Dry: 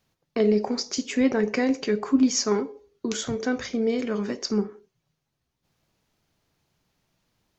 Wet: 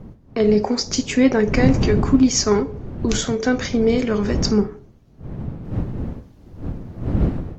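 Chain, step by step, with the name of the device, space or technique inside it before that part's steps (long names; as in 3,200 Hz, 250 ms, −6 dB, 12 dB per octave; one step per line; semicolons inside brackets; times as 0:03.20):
smartphone video outdoors (wind on the microphone 180 Hz −31 dBFS; automatic gain control gain up to 5.5 dB; level +1.5 dB; AAC 64 kbit/s 44,100 Hz)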